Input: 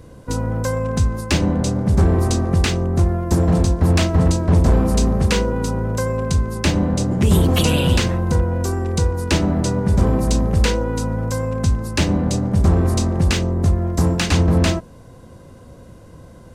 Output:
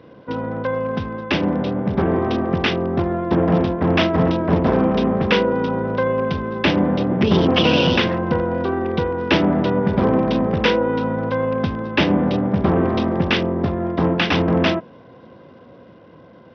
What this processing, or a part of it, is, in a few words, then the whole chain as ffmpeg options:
Bluetooth headset: -af "highpass=210,dynaudnorm=f=430:g=11:m=4.5dB,aresample=8000,aresample=44100,volume=1.5dB" -ar 44100 -c:a sbc -b:a 64k

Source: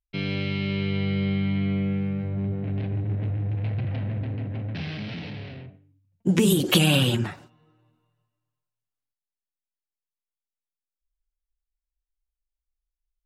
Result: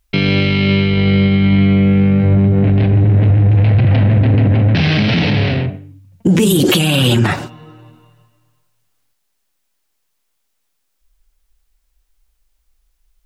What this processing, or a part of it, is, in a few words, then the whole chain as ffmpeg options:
loud club master: -af "acompressor=threshold=-25dB:ratio=2.5,asoftclip=type=hard:threshold=-15.5dB,alimiter=level_in=27dB:limit=-1dB:release=50:level=0:latency=1,volume=-3.5dB"

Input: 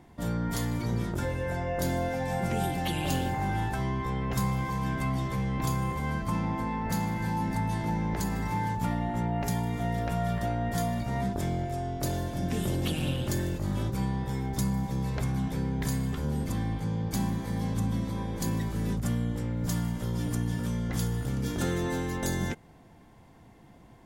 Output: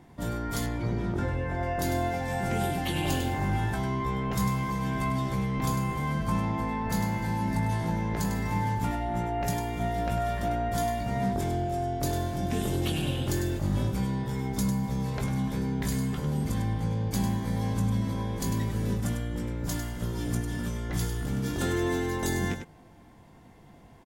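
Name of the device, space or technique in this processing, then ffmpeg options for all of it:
slapback doubling: -filter_complex "[0:a]asplit=3[a][b][c];[b]adelay=20,volume=-7.5dB[d];[c]adelay=100,volume=-7.5dB[e];[a][d][e]amix=inputs=3:normalize=0,asettb=1/sr,asplit=3[f][g][h];[f]atrim=end=0.664[i];[g]atrim=start=0.66:end=1.63,asetpts=PTS-STARTPTS,afade=t=in:d=0.004:c=qsin,afade=t=out:st=0.966:d=0.004:c=qsin,aemphasis=mode=reproduction:type=75fm[j];[h]atrim=start=1.626[k];[i][j]acrossfade=d=0.004:c1=hsin:c2=qsin[l];[l][k]acrossfade=d=0.004:c1=qsin:c2=hsin"

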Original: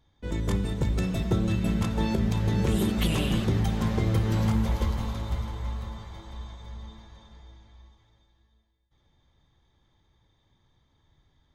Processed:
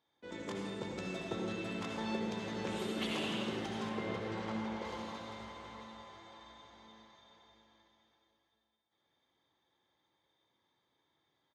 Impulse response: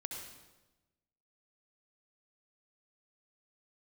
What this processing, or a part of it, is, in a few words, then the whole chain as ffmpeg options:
supermarket ceiling speaker: -filter_complex "[0:a]highpass=340,lowpass=6.1k[a];[1:a]atrim=start_sample=2205[b];[a][b]afir=irnorm=-1:irlink=0,asettb=1/sr,asplit=3[c][d][e];[c]atrim=end=3.894[f];[d]atrim=start=3.89:end=4.85,asetpts=PTS-STARTPTS,afade=t=in:d=0.004:c=qsin,afade=t=out:st=0.956:d=0.004:c=qsin,aemphasis=mode=reproduction:type=50kf[g];[e]atrim=start=4.846[h];[f][g]acrossfade=d=0.004:c1=hsin:c2=qsin[i];[i][h]acrossfade=d=0.004:c1=qsin:c2=hsin,aecho=1:1:725:0.158,volume=-4dB"

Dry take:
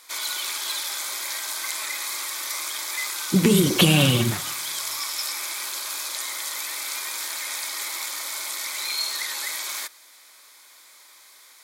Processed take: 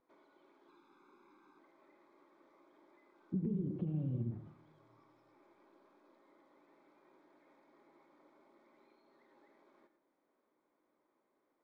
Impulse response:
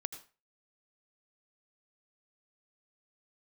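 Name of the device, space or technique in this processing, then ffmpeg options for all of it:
television next door: -filter_complex "[0:a]acompressor=threshold=-36dB:ratio=3,lowpass=280[a];[1:a]atrim=start_sample=2205[b];[a][b]afir=irnorm=-1:irlink=0,asettb=1/sr,asplit=3[c][d][e];[c]atrim=end=0.684[f];[d]atrim=start=0.68:end=1.59,asetpts=PTS-STARTPTS,afade=t=in:d=0.004:c=qsin,afade=t=out:st=0.906:d=0.004:c=qsin,aecho=1:1:0.8:0.92,atrim=end_sample=40131[g];[e]atrim=start=1.586[h];[f][g]acrossfade=d=0.004:c1=hsin:c2=qsin[i];[i][h]acrossfade=d=0.004:c1=qsin:c2=hsin"

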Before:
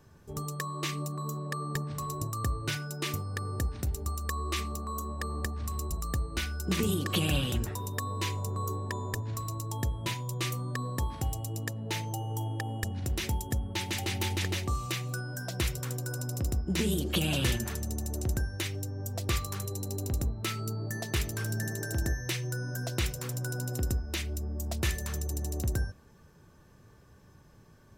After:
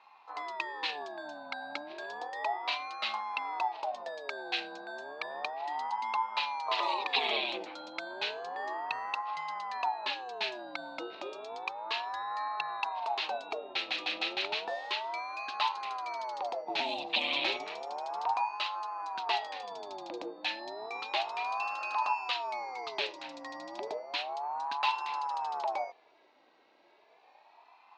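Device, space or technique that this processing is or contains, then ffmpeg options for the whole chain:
voice changer toy: -af "aeval=exprs='val(0)*sin(2*PI*680*n/s+680*0.4/0.32*sin(2*PI*0.32*n/s))':c=same,highpass=510,equalizer=f=530:t=q:w=4:g=-8,equalizer=f=910:t=q:w=4:g=4,equalizer=f=1.4k:t=q:w=4:g=-3,equalizer=f=2.6k:t=q:w=4:g=9,equalizer=f=4k:t=q:w=4:g=10,lowpass=f=4.3k:w=0.5412,lowpass=f=4.3k:w=1.3066"

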